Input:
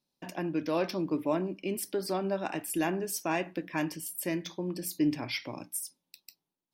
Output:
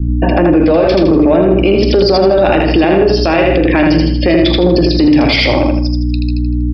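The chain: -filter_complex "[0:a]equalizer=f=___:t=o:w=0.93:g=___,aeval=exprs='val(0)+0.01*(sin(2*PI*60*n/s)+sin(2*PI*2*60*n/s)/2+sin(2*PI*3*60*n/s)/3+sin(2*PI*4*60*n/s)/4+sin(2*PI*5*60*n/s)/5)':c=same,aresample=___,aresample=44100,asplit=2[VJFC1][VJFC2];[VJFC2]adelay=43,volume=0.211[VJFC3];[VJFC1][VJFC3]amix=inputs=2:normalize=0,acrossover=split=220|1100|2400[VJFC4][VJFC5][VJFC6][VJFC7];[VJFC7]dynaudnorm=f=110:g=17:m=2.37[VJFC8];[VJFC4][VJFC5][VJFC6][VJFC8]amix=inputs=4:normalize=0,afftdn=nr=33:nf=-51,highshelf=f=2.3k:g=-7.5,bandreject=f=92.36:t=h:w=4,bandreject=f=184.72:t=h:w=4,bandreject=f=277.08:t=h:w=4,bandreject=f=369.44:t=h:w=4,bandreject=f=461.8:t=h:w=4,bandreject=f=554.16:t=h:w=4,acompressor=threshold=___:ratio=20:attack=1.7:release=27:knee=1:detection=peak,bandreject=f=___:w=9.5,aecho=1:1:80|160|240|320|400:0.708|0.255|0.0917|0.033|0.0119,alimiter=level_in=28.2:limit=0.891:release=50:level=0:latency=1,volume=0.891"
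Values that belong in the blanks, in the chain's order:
520, 8, 11025, 0.0282, 1k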